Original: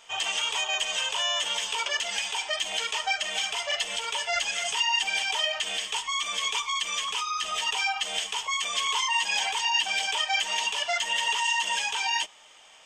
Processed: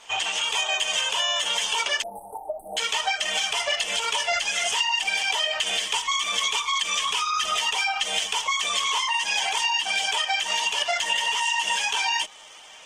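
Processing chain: compression 8:1, threshold -28 dBFS, peak gain reduction 8 dB; 2.02–2.77 s: brick-wall FIR band-stop 910–9000 Hz; trim +7 dB; Opus 16 kbps 48 kHz

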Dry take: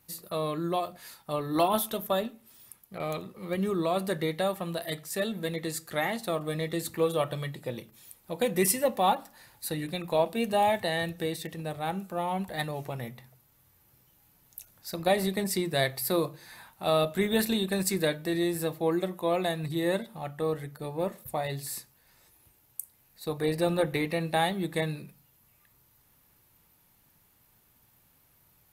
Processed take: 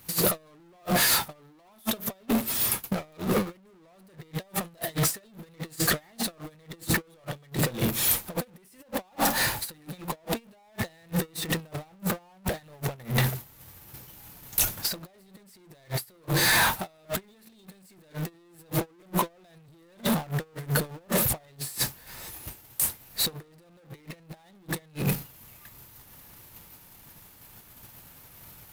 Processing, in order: power-law waveshaper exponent 0.35; compressor with a negative ratio -25 dBFS, ratio -1; gate -23 dBFS, range -28 dB

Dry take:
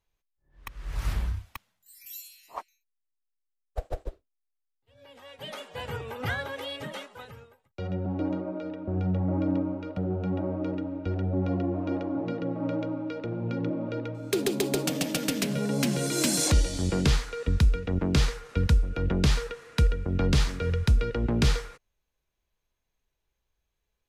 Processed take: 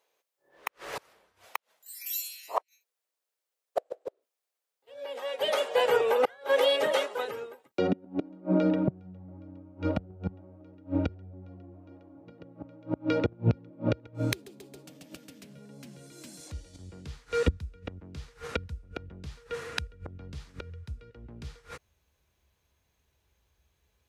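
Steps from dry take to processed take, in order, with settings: inverted gate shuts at -23 dBFS, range -31 dB; high-pass sweep 490 Hz -> 71 Hz, 6.94–10.00 s; trim +8.5 dB

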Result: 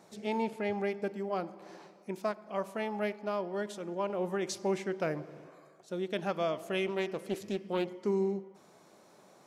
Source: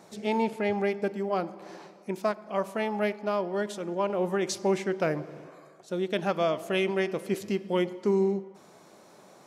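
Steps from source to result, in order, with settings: 6.86–8.03 s: loudspeaker Doppler distortion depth 0.28 ms; trim -5.5 dB

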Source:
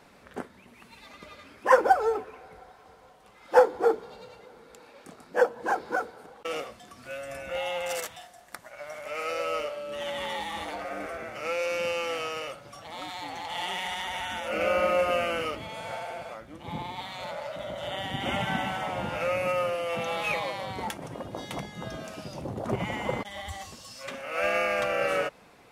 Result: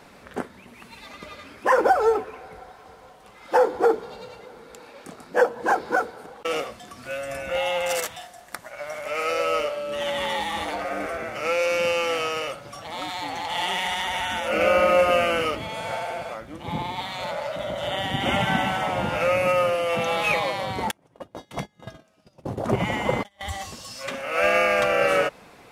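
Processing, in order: 20.91–23.41 s: gate -34 dBFS, range -29 dB; loudness maximiser +14.5 dB; trim -8 dB

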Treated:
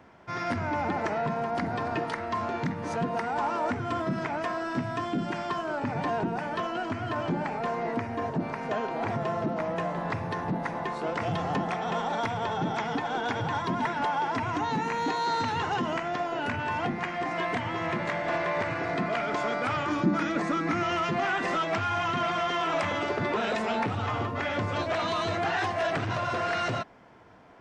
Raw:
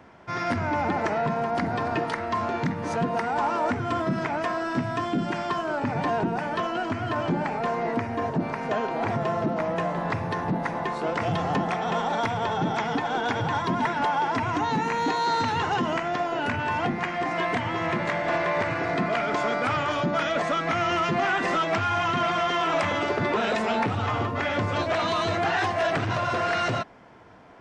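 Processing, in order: 19.86–20.83 s: graphic EQ with 31 bands 200 Hz +10 dB, 315 Hz +12 dB, 630 Hz -8 dB, 3.15 kHz -8 dB; trim -3.5 dB

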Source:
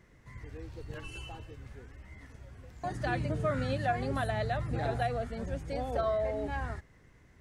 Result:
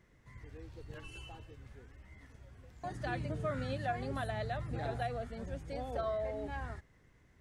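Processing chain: peaking EQ 3.4 kHz +2 dB 0.28 oct; trim -5.5 dB

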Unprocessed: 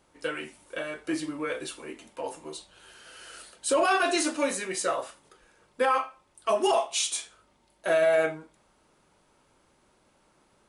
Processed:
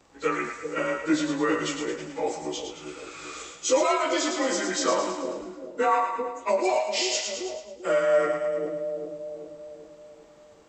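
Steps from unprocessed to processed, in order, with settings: frequency axis rescaled in octaves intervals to 92%; two-band feedback delay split 560 Hz, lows 392 ms, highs 109 ms, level -6.5 dB; gain riding within 4 dB 0.5 s; trim +4 dB

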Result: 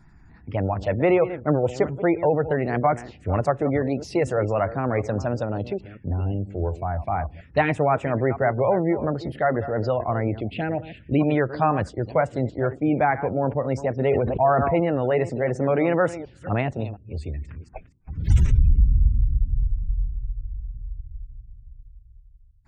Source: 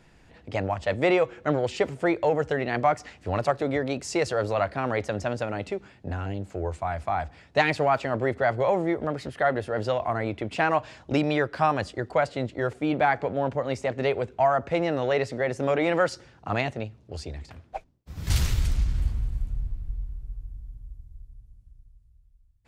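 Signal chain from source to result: chunks repeated in reverse 239 ms, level -13 dB; 10.40–11.19 s: static phaser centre 2.6 kHz, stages 4; spectral gate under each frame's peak -30 dB strong; touch-sensitive phaser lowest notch 490 Hz, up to 4.5 kHz, full sweep at -22 dBFS; bass shelf 310 Hz +6.5 dB; 14.09–14.80 s: decay stretcher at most 27 dB/s; trim +1 dB

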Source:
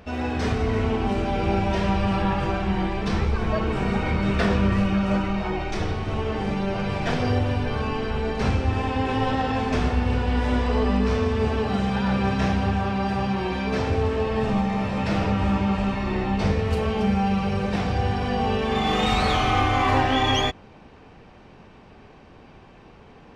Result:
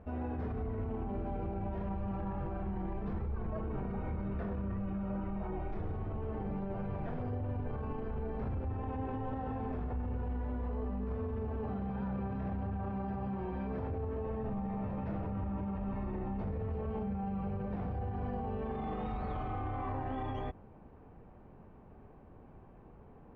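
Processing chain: low-pass 1.1 kHz 12 dB/octave; bass shelf 110 Hz +6 dB; peak limiter -21.5 dBFS, peak gain reduction 13 dB; trim -8.5 dB

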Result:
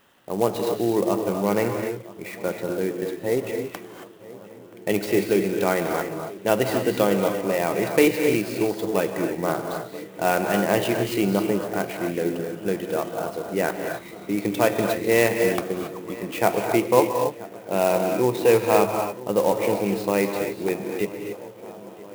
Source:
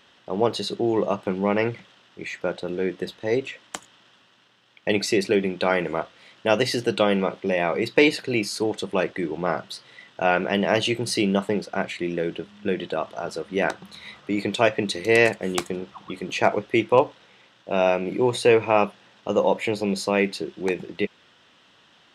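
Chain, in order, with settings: treble shelf 3.2 kHz -11.5 dB; on a send: filtered feedback delay 978 ms, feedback 74%, low-pass 2.3 kHz, level -19 dB; on the sum: gated-style reverb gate 300 ms rising, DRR 4 dB; sampling jitter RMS 0.036 ms

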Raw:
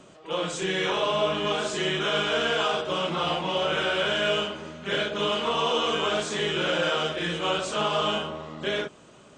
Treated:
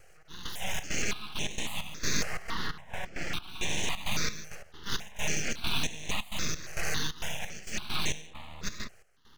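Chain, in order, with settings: peaking EQ 3.2 kHz +10 dB 0.46 oct, from 2.23 s -5.5 dB, from 3.33 s +9 dB; full-wave rectifier; trance gate "xx..xxx.xx..x." 133 bpm -12 dB; stepped phaser 3.6 Hz 980–4700 Hz; trim -2.5 dB

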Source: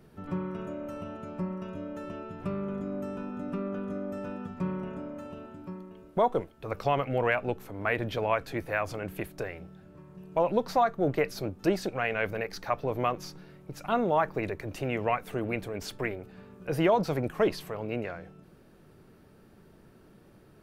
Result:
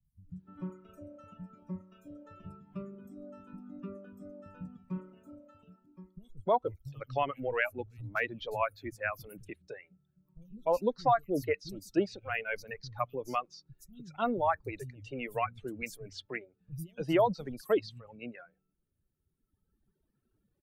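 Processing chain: expander on every frequency bin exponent 1.5; reverb removal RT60 1.8 s; three bands offset in time lows, highs, mids 50/300 ms, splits 150/5800 Hz

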